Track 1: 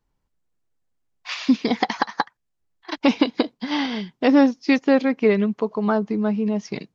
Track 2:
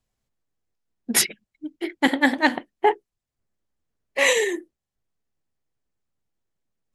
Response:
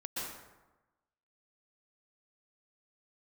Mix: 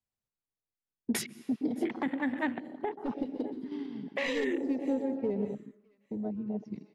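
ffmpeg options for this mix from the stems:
-filter_complex "[0:a]adynamicsmooth=sensitivity=2.5:basefreq=6k,volume=12.5dB,asoftclip=hard,volume=-12.5dB,volume=-14.5dB,asplit=3[a][b][c];[a]atrim=end=5.45,asetpts=PTS-STARTPTS,afade=t=out:st=5.446:d=0.004:c=hsin[d];[b]atrim=start=5.45:end=6.11,asetpts=PTS-STARTPTS,volume=0[e];[c]atrim=start=6.11,asetpts=PTS-STARTPTS,afade=t=in:d=0.004:c=hsin[f];[d][e][f]concat=n=3:v=0:a=1,asplit=3[g][h][i];[h]volume=-5dB[j];[i]volume=-20dB[k];[1:a]highpass=61,volume=1dB,asplit=3[l][m][n];[m]volume=-17dB[o];[n]volume=-23dB[p];[2:a]atrim=start_sample=2205[q];[j][o]amix=inputs=2:normalize=0[r];[r][q]afir=irnorm=-1:irlink=0[s];[k][p]amix=inputs=2:normalize=0,aecho=0:1:609|1218|1827|2436:1|0.29|0.0841|0.0244[t];[g][l][s][t]amix=inputs=4:normalize=0,afwtdn=0.0355,acrossover=split=250[u][v];[v]acompressor=threshold=-28dB:ratio=6[w];[u][w]amix=inputs=2:normalize=0,alimiter=limit=-21dB:level=0:latency=1:release=256"

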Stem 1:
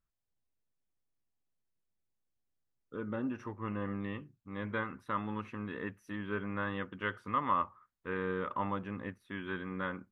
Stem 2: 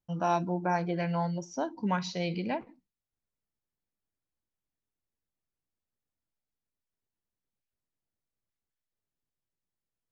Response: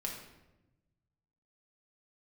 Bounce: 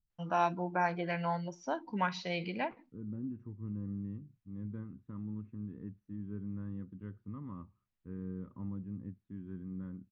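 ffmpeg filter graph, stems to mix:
-filter_complex "[0:a]firequalizer=gain_entry='entry(170,0);entry(590,-25);entry(2200,-29)':delay=0.05:min_phase=1,volume=1.5dB[a];[1:a]equalizer=f=2.5k:w=0.36:g=12,adelay=100,volume=-7dB[b];[a][b]amix=inputs=2:normalize=0,highshelf=f=3.4k:g=-12"

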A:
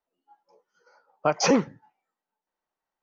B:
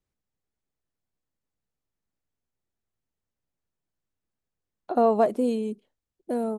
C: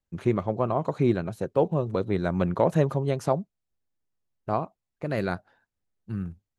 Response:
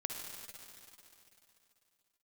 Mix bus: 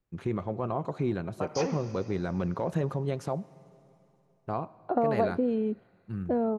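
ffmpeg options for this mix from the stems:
-filter_complex "[0:a]acompressor=threshold=-22dB:ratio=6,adelay=150,volume=-12.5dB,asplit=2[a][b];[b]volume=-3.5dB[c];[1:a]lowpass=2.1k,acompressor=threshold=-25dB:ratio=6,volume=2dB[d];[2:a]bandreject=f=610:w=15,alimiter=limit=-16dB:level=0:latency=1:release=20,volume=-4.5dB,asplit=2[e][f];[f]volume=-16dB[g];[3:a]atrim=start_sample=2205[h];[c][g]amix=inputs=2:normalize=0[i];[i][h]afir=irnorm=-1:irlink=0[j];[a][d][e][j]amix=inputs=4:normalize=0,highshelf=f=7.5k:g=-5.5"

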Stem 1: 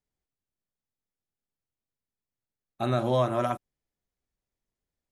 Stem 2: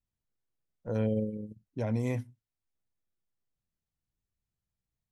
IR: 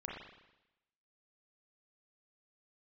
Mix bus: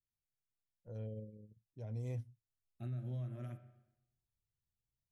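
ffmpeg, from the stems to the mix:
-filter_complex "[0:a]equalizer=f=125:t=o:w=1:g=6,equalizer=f=250:t=o:w=1:g=8,equalizer=f=500:t=o:w=1:g=-7,equalizer=f=1k:t=o:w=1:g=-11,equalizer=f=2k:t=o:w=1:g=9,equalizer=f=4k:t=o:w=1:g=-11,equalizer=f=8k:t=o:w=1:g=-10,volume=-12dB,asplit=2[a][b];[b]volume=-7dB[c];[1:a]highshelf=f=6.7k:g=-7.5,afade=t=in:st=1.82:d=0.65:silence=0.354813[d];[2:a]atrim=start_sample=2205[e];[c][e]afir=irnorm=-1:irlink=0[f];[a][d][f]amix=inputs=3:normalize=0,equalizer=f=125:t=o:w=1:g=4,equalizer=f=250:t=o:w=1:g=-9,equalizer=f=1k:t=o:w=1:g=-9,equalizer=f=2k:t=o:w=1:g=-9,flanger=delay=2.4:depth=1.3:regen=-84:speed=0.46:shape=triangular,alimiter=level_in=10.5dB:limit=-24dB:level=0:latency=1:release=271,volume=-10.5dB"

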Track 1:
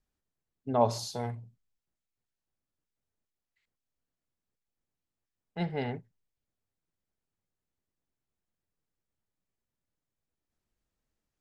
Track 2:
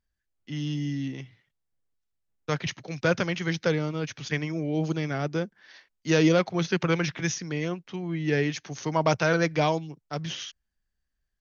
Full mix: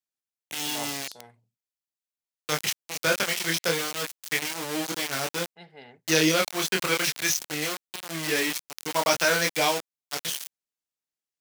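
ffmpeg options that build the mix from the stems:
-filter_complex "[0:a]volume=-13dB[a];[1:a]flanger=delay=22.5:depth=4.1:speed=0.21,aeval=exprs='val(0)*gte(abs(val(0)),0.0237)':c=same,volume=2.5dB[b];[a][b]amix=inputs=2:normalize=0,highpass=f=380:p=1,highshelf=f=2.3k:g=11.5"

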